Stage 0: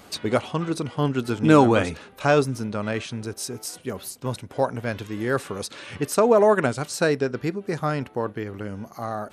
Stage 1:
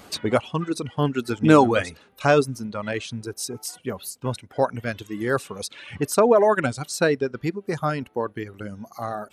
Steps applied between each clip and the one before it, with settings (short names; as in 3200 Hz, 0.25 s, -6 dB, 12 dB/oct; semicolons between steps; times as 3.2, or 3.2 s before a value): reverb removal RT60 1.6 s; gain +1.5 dB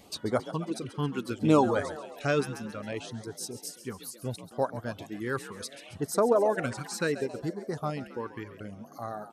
frequency-shifting echo 0.136 s, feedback 62%, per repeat +52 Hz, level -13.5 dB; LFO notch sine 0.69 Hz 600–2700 Hz; gain -7 dB